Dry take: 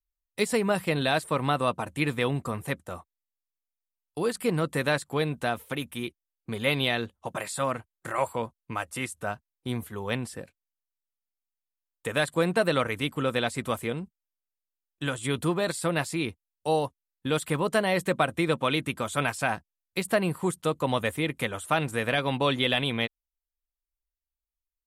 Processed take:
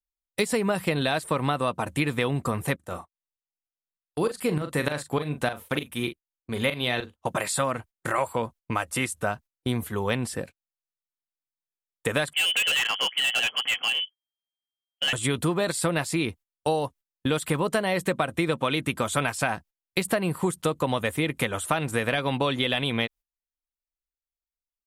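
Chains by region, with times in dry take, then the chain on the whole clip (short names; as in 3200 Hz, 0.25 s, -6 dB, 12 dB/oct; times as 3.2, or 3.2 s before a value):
2.76–7.16 tremolo saw up 3.3 Hz, depth 85% + doubler 40 ms -10 dB
12.33–15.13 inverted band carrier 3200 Hz + HPF 240 Hz + hard clip -26.5 dBFS
whole clip: gate -47 dBFS, range -16 dB; compressor, threshold -29 dBFS; gain +7.5 dB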